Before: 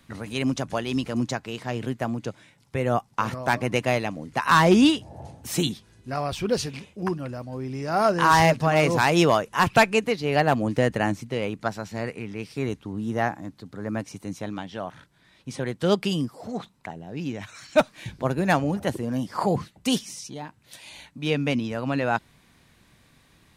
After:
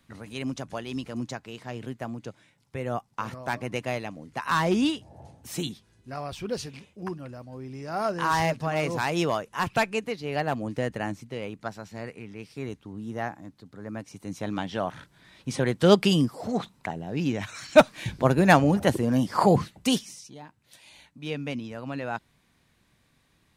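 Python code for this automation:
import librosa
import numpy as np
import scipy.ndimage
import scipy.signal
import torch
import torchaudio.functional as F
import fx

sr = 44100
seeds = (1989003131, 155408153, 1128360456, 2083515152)

y = fx.gain(x, sr, db=fx.line((14.05, -7.0), (14.63, 4.0), (19.73, 4.0), (20.24, -8.0)))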